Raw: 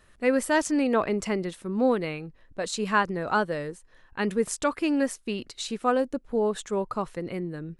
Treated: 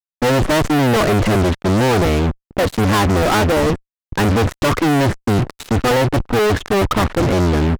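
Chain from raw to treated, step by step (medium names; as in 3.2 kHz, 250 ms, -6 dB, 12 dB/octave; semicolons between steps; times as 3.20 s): octave divider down 1 oct, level +1 dB; low-pass 1.4 kHz 12 dB/octave; fuzz box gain 45 dB, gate -46 dBFS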